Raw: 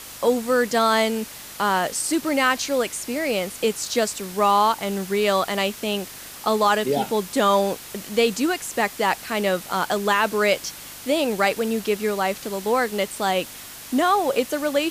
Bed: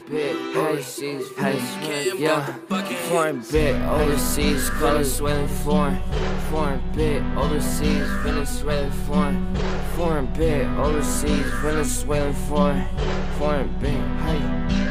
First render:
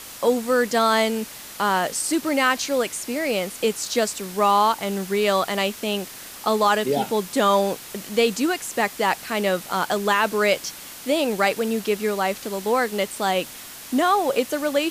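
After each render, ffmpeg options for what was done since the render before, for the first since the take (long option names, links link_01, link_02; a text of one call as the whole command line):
ffmpeg -i in.wav -af "bandreject=frequency=50:width_type=h:width=4,bandreject=frequency=100:width_type=h:width=4,bandreject=frequency=150:width_type=h:width=4" out.wav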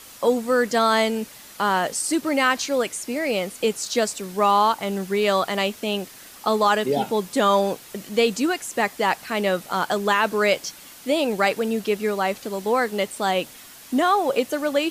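ffmpeg -i in.wav -af "afftdn=noise_reduction=6:noise_floor=-39" out.wav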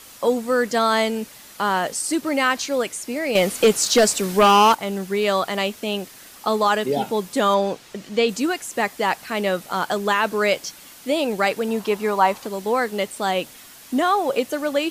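ffmpeg -i in.wav -filter_complex "[0:a]asettb=1/sr,asplit=3[link_01][link_02][link_03];[link_01]atrim=end=3.354[link_04];[link_02]atrim=start=3.35:end=4.75,asetpts=PTS-STARTPTS,afade=type=in:duration=0.004:curve=qsin,afade=type=out:start_time=1.396:duration=0.004:curve=qsin,aeval=exprs='0.376*sin(PI/2*1.78*val(0)/0.376)':channel_layout=same[link_05];[link_03]atrim=start=4.746[link_06];[link_04][link_05]acrossfade=duration=0.004:curve1=hsin:curve2=qsin[link_07];[link_07][link_06]acrossfade=duration=0.004:curve1=qsin:curve2=hsin,asettb=1/sr,asplit=3[link_08][link_09][link_10];[link_08]atrim=end=7.544[link_11];[link_09]atrim=start=7.54:end=8.29,asetpts=PTS-STARTPTS,afade=type=in:duration=0.004:curve=qsin,afade=type=out:start_time=0.746:duration=0.004:curve=qsin,acrossover=split=7400[link_12][link_13];[link_13]acompressor=threshold=-58dB:ratio=4:attack=1:release=60[link_14];[link_12][link_14]amix=inputs=2:normalize=0[link_15];[link_10]atrim=start=8.286[link_16];[link_11][link_15]acrossfade=duration=0.004:curve1=hsin:curve2=qsin[link_17];[link_17][link_16]acrossfade=duration=0.004:curve1=qsin:curve2=hsin,asettb=1/sr,asplit=3[link_18][link_19][link_20];[link_18]atrim=end=11.684[link_21];[link_19]atrim=start=11.68:end=12.47,asetpts=PTS-STARTPTS,afade=type=in:duration=0.004:curve=qsin,afade=type=out:start_time=0.786:duration=0.004:curve=qsin,equalizer=frequency=960:width_type=o:width=0.62:gain=13[link_22];[link_20]atrim=start=12.466[link_23];[link_21][link_22]acrossfade=duration=0.004:curve1=hsin:curve2=qsin[link_24];[link_24][link_23]acrossfade=duration=0.004:curve1=qsin:curve2=hsin" out.wav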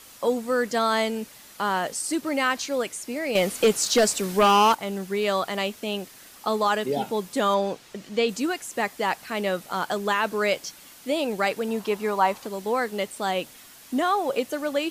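ffmpeg -i in.wav -af "volume=-4dB" out.wav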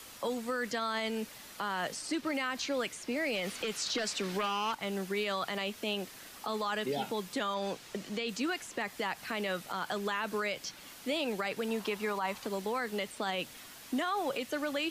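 ffmpeg -i in.wav -filter_complex "[0:a]acrossover=split=100|230|1200|5100[link_01][link_02][link_03][link_04][link_05];[link_01]acompressor=threshold=-60dB:ratio=4[link_06];[link_02]acompressor=threshold=-44dB:ratio=4[link_07];[link_03]acompressor=threshold=-34dB:ratio=4[link_08];[link_04]acompressor=threshold=-29dB:ratio=4[link_09];[link_05]acompressor=threshold=-52dB:ratio=4[link_10];[link_06][link_07][link_08][link_09][link_10]amix=inputs=5:normalize=0,alimiter=level_in=0.5dB:limit=-24dB:level=0:latency=1:release=38,volume=-0.5dB" out.wav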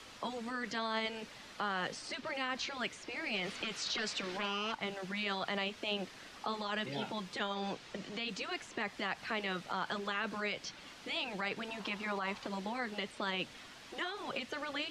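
ffmpeg -i in.wav -af "lowpass=4900,afftfilt=real='re*lt(hypot(re,im),0.126)':imag='im*lt(hypot(re,im),0.126)':win_size=1024:overlap=0.75" out.wav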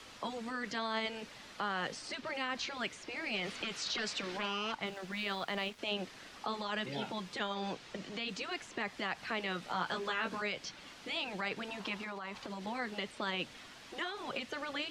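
ffmpeg -i in.wav -filter_complex "[0:a]asettb=1/sr,asplit=3[link_01][link_02][link_03];[link_01]atrim=end=4.864[link_04];[link_02]atrim=start=4.86:end=5.79,asetpts=PTS-STARTPTS,afade=type=in:duration=0.004:curve=qsin,afade=type=out:start_time=0.926:duration=0.004:curve=qsin,aeval=exprs='sgn(val(0))*max(abs(val(0))-0.00178,0)':channel_layout=same[link_05];[link_03]atrim=start=5.786[link_06];[link_04][link_05]acrossfade=duration=0.004:curve1=hsin:curve2=qsin[link_07];[link_07][link_06]acrossfade=duration=0.004:curve1=qsin:curve2=hsin,asettb=1/sr,asplit=3[link_08][link_09][link_10];[link_08]atrim=end=9.614[link_11];[link_09]atrim=start=9.61:end=10.42,asetpts=PTS-STARTPTS,afade=type=in:duration=0.004:curve=qsin,afade=type=out:start_time=0.806:duration=0.004:curve=qsin,asplit=2[link_12][link_13];[link_13]adelay=17,volume=-4dB[link_14];[link_12][link_14]amix=inputs=2:normalize=0,atrim=end_sample=35721[link_15];[link_10]atrim=start=10.416[link_16];[link_11][link_15]acrossfade=duration=0.004:curve1=hsin:curve2=qsin[link_17];[link_17][link_16]acrossfade=duration=0.004:curve1=qsin:curve2=hsin,asettb=1/sr,asplit=3[link_18][link_19][link_20];[link_18]atrim=end=12.014[link_21];[link_19]atrim=start=12.01:end=12.67,asetpts=PTS-STARTPTS,afade=type=in:duration=0.004:curve=qsin,afade=type=out:start_time=0.656:duration=0.004:curve=qsin,acompressor=threshold=-38dB:ratio=6:attack=3.2:release=140:knee=1:detection=peak[link_22];[link_20]atrim=start=12.666[link_23];[link_21][link_22]acrossfade=duration=0.004:curve1=hsin:curve2=qsin[link_24];[link_24][link_23]acrossfade=duration=0.004:curve1=qsin:curve2=hsin" out.wav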